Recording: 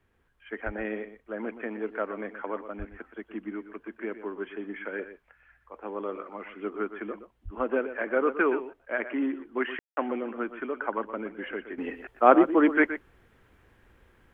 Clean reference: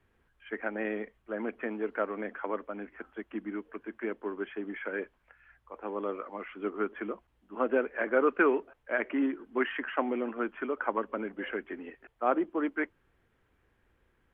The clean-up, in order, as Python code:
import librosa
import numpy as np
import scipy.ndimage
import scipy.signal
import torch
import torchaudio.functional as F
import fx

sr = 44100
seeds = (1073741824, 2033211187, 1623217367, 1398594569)

y = fx.highpass(x, sr, hz=140.0, slope=24, at=(0.65, 0.77), fade=0.02)
y = fx.highpass(y, sr, hz=140.0, slope=24, at=(2.78, 2.9), fade=0.02)
y = fx.highpass(y, sr, hz=140.0, slope=24, at=(7.44, 7.56), fade=0.02)
y = fx.fix_ambience(y, sr, seeds[0], print_start_s=0.0, print_end_s=0.5, start_s=9.79, end_s=9.97)
y = fx.fix_echo_inverse(y, sr, delay_ms=121, level_db=-12.0)
y = fx.gain(y, sr, db=fx.steps((0.0, 0.0), (11.78, -10.0)))